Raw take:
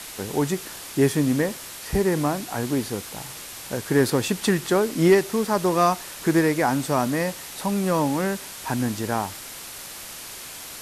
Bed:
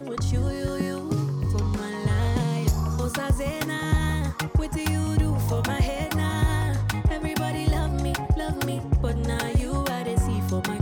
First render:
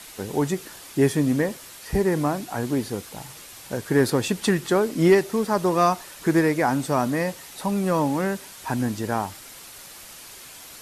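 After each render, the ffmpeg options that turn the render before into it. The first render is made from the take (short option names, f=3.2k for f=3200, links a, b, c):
-af "afftdn=nr=6:nf=-38"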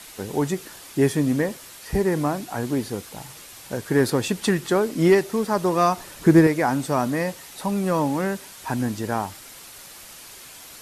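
-filter_complex "[0:a]asettb=1/sr,asplit=3[a][b][c];[a]atrim=end=5.974[d];[b]atrim=start=5.97:end=6.47,asetpts=PTS-STARTPTS,afade=t=in:d=0.004:c=qsin,afade=t=out:st=0.496:d=0.004:c=qsin,lowshelf=f=440:g=9[e];[c]atrim=start=6.466[f];[d][e]acrossfade=d=0.004:c1=hsin:c2=qsin[g];[g][f]acrossfade=d=0.004:c1=qsin:c2=hsin"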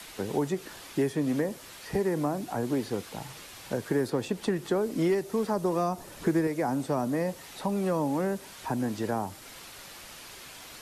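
-filter_complex "[0:a]acrossover=split=110|320|870|5100[a][b][c][d][e];[a]acompressor=threshold=-51dB:ratio=4[f];[b]acompressor=threshold=-33dB:ratio=4[g];[c]acompressor=threshold=-28dB:ratio=4[h];[d]acompressor=threshold=-43dB:ratio=4[i];[e]acompressor=threshold=-51dB:ratio=4[j];[f][g][h][i][j]amix=inputs=5:normalize=0"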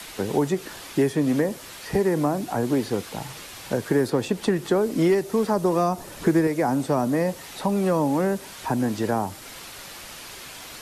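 -af "volume=6dB"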